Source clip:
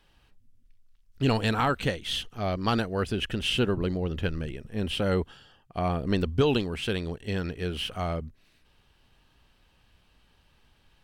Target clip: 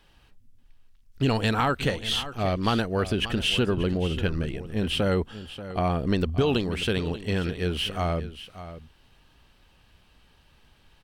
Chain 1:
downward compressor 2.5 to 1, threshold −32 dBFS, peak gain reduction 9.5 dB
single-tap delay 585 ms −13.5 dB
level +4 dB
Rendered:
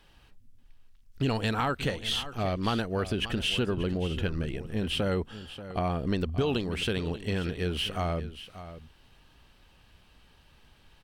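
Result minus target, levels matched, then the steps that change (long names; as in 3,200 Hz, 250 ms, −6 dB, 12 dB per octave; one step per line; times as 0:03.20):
downward compressor: peak gain reduction +4.5 dB
change: downward compressor 2.5 to 1, threshold −24.5 dBFS, peak gain reduction 5 dB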